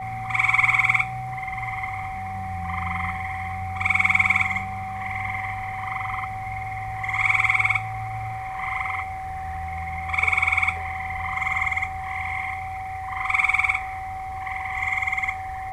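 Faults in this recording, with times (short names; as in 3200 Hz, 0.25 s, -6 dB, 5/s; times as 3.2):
tone 760 Hz -30 dBFS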